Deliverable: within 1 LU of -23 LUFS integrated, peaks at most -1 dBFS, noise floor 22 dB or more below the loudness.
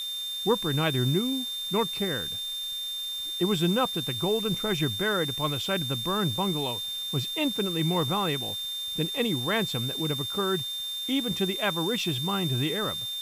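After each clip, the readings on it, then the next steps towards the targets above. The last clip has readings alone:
steady tone 3600 Hz; tone level -31 dBFS; noise floor -34 dBFS; noise floor target -50 dBFS; loudness -27.5 LUFS; peak -11.0 dBFS; loudness target -23.0 LUFS
-> notch 3600 Hz, Q 30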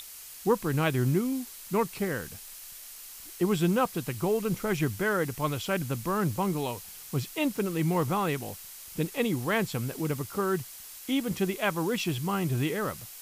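steady tone none; noise floor -45 dBFS; noise floor target -52 dBFS
-> denoiser 7 dB, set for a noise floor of -45 dBFS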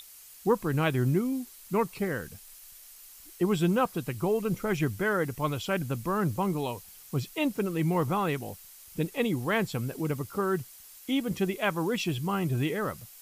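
noise floor -51 dBFS; noise floor target -52 dBFS
-> denoiser 6 dB, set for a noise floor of -51 dBFS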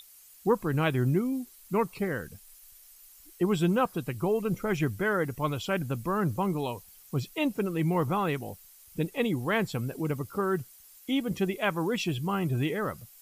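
noise floor -54 dBFS; loudness -29.5 LUFS; peak -12.0 dBFS; loudness target -23.0 LUFS
-> gain +6.5 dB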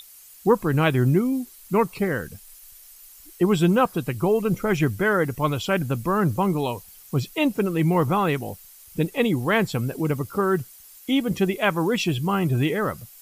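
loudness -23.0 LUFS; peak -5.5 dBFS; noise floor -48 dBFS

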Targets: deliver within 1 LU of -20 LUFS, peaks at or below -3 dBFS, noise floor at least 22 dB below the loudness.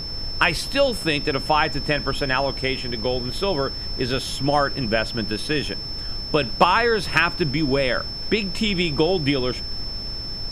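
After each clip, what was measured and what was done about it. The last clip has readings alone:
steady tone 5300 Hz; tone level -30 dBFS; noise floor -31 dBFS; noise floor target -45 dBFS; loudness -22.5 LUFS; peak -3.0 dBFS; loudness target -20.0 LUFS
-> notch 5300 Hz, Q 30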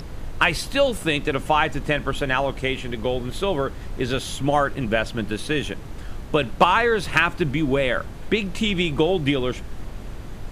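steady tone none; noise floor -35 dBFS; noise floor target -45 dBFS
-> noise print and reduce 10 dB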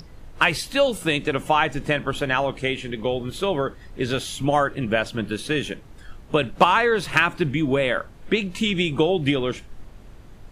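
noise floor -44 dBFS; noise floor target -45 dBFS
-> noise print and reduce 6 dB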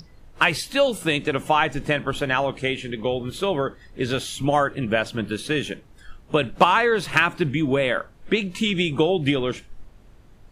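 noise floor -50 dBFS; loudness -22.5 LUFS; peak -3.5 dBFS; loudness target -20.0 LUFS
-> gain +2.5 dB; limiter -3 dBFS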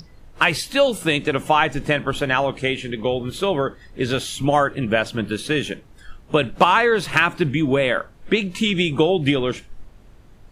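loudness -20.5 LUFS; peak -3.0 dBFS; noise floor -47 dBFS

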